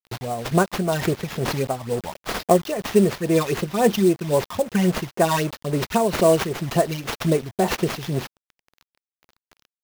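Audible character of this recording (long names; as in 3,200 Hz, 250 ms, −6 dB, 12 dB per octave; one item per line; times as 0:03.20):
a quantiser's noise floor 6 bits, dither none
phaser sweep stages 12, 3.7 Hz, lowest notch 430–3,900 Hz
aliases and images of a low sample rate 8,700 Hz, jitter 20%
tremolo triangle 2.1 Hz, depth 60%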